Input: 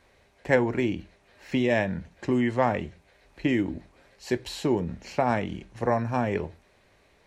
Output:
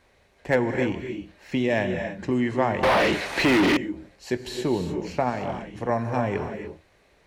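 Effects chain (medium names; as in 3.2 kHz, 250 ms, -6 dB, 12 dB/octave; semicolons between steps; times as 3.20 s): 5.29–5.89 s: compression 2.5:1, threshold -28 dBFS, peak gain reduction 6 dB; gated-style reverb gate 320 ms rising, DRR 6 dB; 2.83–3.77 s: overdrive pedal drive 38 dB, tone 7.6 kHz, clips at -12.5 dBFS; slew-rate limiter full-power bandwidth 280 Hz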